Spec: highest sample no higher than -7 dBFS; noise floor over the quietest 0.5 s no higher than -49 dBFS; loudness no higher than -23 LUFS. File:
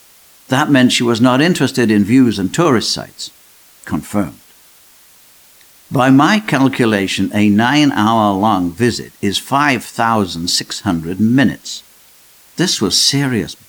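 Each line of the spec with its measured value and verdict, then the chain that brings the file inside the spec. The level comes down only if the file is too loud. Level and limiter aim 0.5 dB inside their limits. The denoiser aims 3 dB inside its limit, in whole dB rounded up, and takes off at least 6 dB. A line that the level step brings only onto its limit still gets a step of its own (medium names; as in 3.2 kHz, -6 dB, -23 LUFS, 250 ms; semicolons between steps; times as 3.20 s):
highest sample -1.5 dBFS: fail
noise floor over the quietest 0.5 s -46 dBFS: fail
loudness -13.5 LUFS: fail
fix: trim -10 dB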